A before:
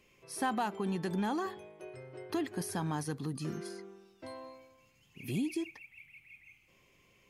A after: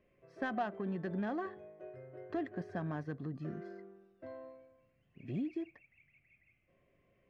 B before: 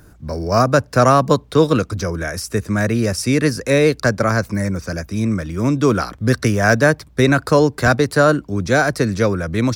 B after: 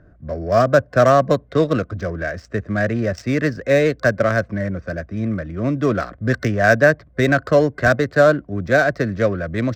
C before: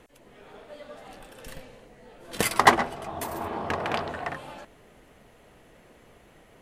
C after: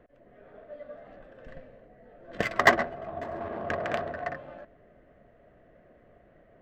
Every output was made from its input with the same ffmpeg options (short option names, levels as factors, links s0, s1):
-af "adynamicsmooth=sensitivity=1.5:basefreq=1500,superequalizer=8b=2:9b=0.501:11b=1.78:16b=0.316,volume=0.668"